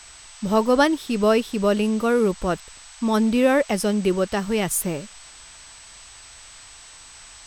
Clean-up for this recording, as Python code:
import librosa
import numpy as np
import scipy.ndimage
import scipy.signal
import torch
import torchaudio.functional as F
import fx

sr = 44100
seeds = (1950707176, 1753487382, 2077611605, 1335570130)

y = fx.notch(x, sr, hz=8000.0, q=30.0)
y = fx.noise_reduce(y, sr, print_start_s=6.64, print_end_s=7.14, reduce_db=22.0)